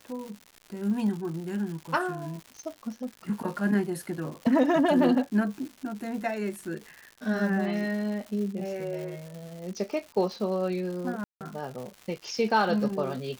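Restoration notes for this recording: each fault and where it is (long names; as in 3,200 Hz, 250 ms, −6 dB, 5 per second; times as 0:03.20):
surface crackle 260 per second −37 dBFS
0:11.24–0:11.41: drop-out 168 ms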